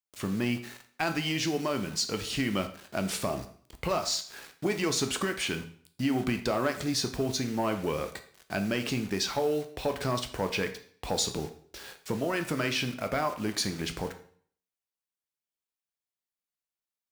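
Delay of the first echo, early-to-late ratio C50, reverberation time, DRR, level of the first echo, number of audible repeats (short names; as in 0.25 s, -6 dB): none, 12.0 dB, 0.50 s, 7.0 dB, none, none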